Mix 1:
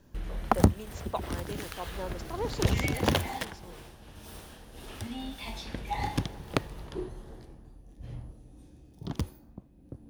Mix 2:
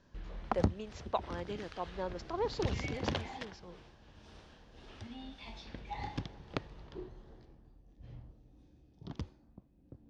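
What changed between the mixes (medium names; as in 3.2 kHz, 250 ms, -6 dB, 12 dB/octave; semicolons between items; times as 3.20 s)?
background -9.0 dB; master: add low-pass 5.7 kHz 24 dB/octave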